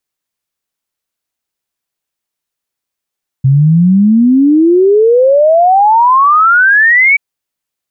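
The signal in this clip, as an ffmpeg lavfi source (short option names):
-f lavfi -i "aevalsrc='0.631*clip(min(t,3.73-t)/0.01,0,1)*sin(2*PI*130*3.73/log(2300/130)*(exp(log(2300/130)*t/3.73)-1))':d=3.73:s=44100"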